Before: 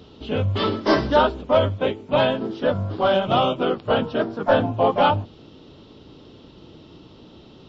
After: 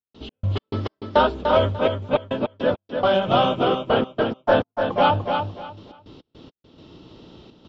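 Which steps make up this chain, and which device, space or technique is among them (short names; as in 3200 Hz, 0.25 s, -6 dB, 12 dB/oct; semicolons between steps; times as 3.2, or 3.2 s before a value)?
trance gate with a delay (step gate ".x.x.x..xxxxx" 104 bpm -60 dB; feedback echo 0.295 s, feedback 23%, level -6 dB)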